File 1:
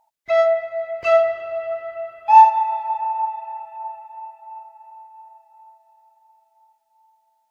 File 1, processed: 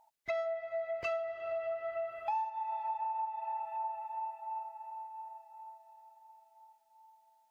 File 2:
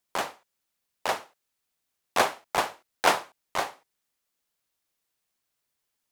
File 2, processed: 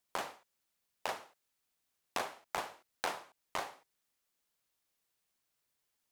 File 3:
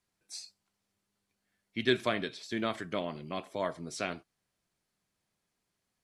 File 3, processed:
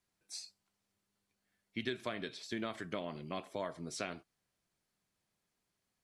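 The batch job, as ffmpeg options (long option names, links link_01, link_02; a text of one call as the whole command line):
ffmpeg -i in.wav -af "acompressor=threshold=-32dB:ratio=8,volume=-2dB" out.wav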